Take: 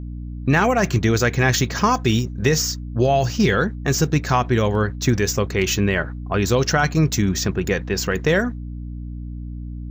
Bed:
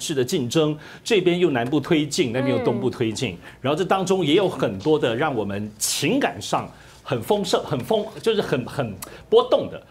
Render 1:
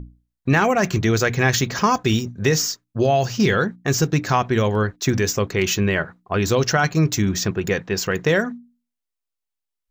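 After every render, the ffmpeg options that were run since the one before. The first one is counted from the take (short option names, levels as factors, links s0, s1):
-af "bandreject=f=60:t=h:w=6,bandreject=f=120:t=h:w=6,bandreject=f=180:t=h:w=6,bandreject=f=240:t=h:w=6,bandreject=f=300:t=h:w=6"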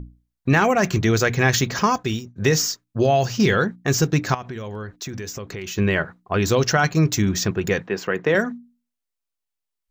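-filter_complex "[0:a]asettb=1/sr,asplit=3[s0][s1][s2];[s0]atrim=end=4.344[s3];[s1]atrim=start=4.34:end=5.78,asetpts=PTS-STARTPTS,afade=t=in:d=0.004:c=qsin,afade=t=out:st=1.436:d=0.004:c=qsin,acompressor=threshold=0.0355:ratio=6:attack=3.2:release=140:knee=1:detection=peak[s4];[s2]atrim=start=5.776[s5];[s3][s4]acrossfade=d=0.004:c1=hsin:c2=qsin[s6];[s6][s5]acrossfade=d=0.004:c1=qsin:c2=hsin,asettb=1/sr,asplit=3[s7][s8][s9];[s7]atrim=end=7.874[s10];[s8]atrim=start=7.87:end=8.35,asetpts=PTS-STARTPTS,afade=t=in:d=0.004:c=qsin,afade=t=out:st=0.476:d=0.004:c=qsin,acrossover=split=170 3000:gain=0.158 1 0.2[s11][s12][s13];[s11][s12][s13]amix=inputs=3:normalize=0[s14];[s9]atrim=start=8.346[s15];[s10][s14]acrossfade=d=0.004:c1=hsin:c2=qsin[s16];[s16][s15]acrossfade=d=0.004:c1=qsin:c2=hsin,asplit=2[s17][s18];[s17]atrim=end=2.36,asetpts=PTS-STARTPTS,afade=t=out:st=1.79:d=0.57:silence=0.149624[s19];[s18]atrim=start=2.36,asetpts=PTS-STARTPTS,afade=t=in:d=0.004:c=hsin:silence=0.149624[s20];[s19][s20]concat=n=2:v=0:a=1"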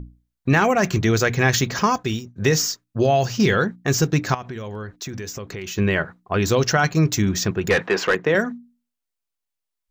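-filter_complex "[0:a]asettb=1/sr,asplit=3[s0][s1][s2];[s0]atrim=end=7.704[s3];[s1]atrim=start=7.7:end=8.15,asetpts=PTS-STARTPTS,afade=t=in:d=0.004:c=qsin,afade=t=out:st=0.446:d=0.004:c=qsin,asplit=2[s4][s5];[s5]highpass=f=720:p=1,volume=8.91,asoftclip=type=tanh:threshold=0.376[s6];[s4][s6]amix=inputs=2:normalize=0,lowpass=f=3200:p=1,volume=0.501[s7];[s2]atrim=start=8.146[s8];[s3][s7]acrossfade=d=0.004:c1=hsin:c2=qsin[s9];[s9][s8]acrossfade=d=0.004:c1=qsin:c2=hsin"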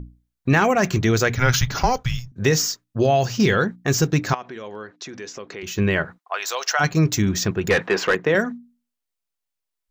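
-filter_complex "[0:a]asettb=1/sr,asplit=3[s0][s1][s2];[s0]atrim=end=1.354[s3];[s1]atrim=start=1.35:end=2.32,asetpts=PTS-STARTPTS,afade=t=in:d=0.004:c=qsin,afade=t=out:st=0.966:d=0.004:c=qsin,afreqshift=-250[s4];[s2]atrim=start=2.316[s5];[s3][s4]acrossfade=d=0.004:c1=hsin:c2=qsin[s6];[s6][s5]acrossfade=d=0.004:c1=qsin:c2=hsin,asettb=1/sr,asplit=3[s7][s8][s9];[s7]atrim=end=4.334[s10];[s8]atrim=start=4.33:end=5.63,asetpts=PTS-STARTPTS,afade=t=in:d=0.004:c=qsin,afade=t=out:st=1.296:d=0.004:c=qsin,highpass=280,lowpass=5500[s11];[s9]atrim=start=5.626[s12];[s10][s11]acrossfade=d=0.004:c1=hsin:c2=qsin[s13];[s13][s12]acrossfade=d=0.004:c1=qsin:c2=hsin,asplit=3[s14][s15][s16];[s14]afade=t=out:st=6.17:d=0.02[s17];[s15]highpass=f=690:w=0.5412,highpass=f=690:w=1.3066,afade=t=in:st=6.17:d=0.02,afade=t=out:st=6.79:d=0.02[s18];[s16]afade=t=in:st=6.79:d=0.02[s19];[s17][s18][s19]amix=inputs=3:normalize=0"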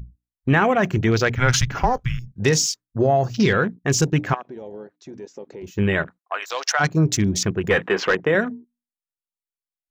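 -af "equalizer=f=11000:w=0.88:g=6.5,afwtdn=0.0282"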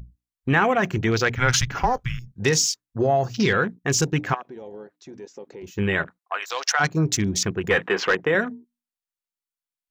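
-af "lowshelf=f=440:g=-4.5,bandreject=f=610:w=12"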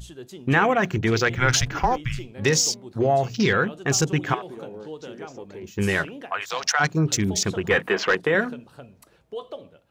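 -filter_complex "[1:a]volume=0.119[s0];[0:a][s0]amix=inputs=2:normalize=0"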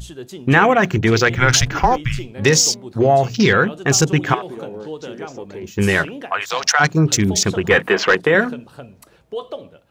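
-af "volume=2.11,alimiter=limit=0.891:level=0:latency=1"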